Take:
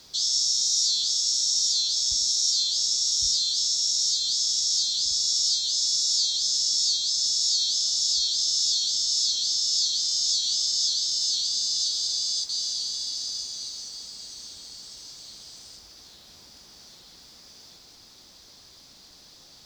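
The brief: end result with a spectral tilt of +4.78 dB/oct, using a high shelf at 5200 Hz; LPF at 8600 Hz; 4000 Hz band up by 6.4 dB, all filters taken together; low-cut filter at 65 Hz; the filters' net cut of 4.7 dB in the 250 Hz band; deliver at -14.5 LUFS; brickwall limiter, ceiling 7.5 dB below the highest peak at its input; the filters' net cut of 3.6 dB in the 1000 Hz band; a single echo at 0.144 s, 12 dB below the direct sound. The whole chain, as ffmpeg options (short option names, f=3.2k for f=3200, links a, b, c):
-af "highpass=65,lowpass=8.6k,equalizer=f=250:t=o:g=-6,equalizer=f=1k:t=o:g=-5,equalizer=f=4k:t=o:g=6.5,highshelf=f=5.2k:g=4,alimiter=limit=-11.5dB:level=0:latency=1,aecho=1:1:144:0.251,volume=4.5dB"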